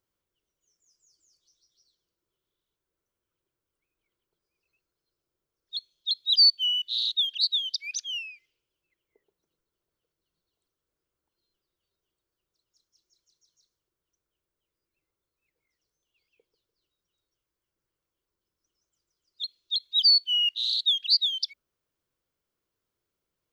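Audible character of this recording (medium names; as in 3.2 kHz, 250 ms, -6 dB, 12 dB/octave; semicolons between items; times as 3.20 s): noise floor -87 dBFS; spectral tilt +0.5 dB/octave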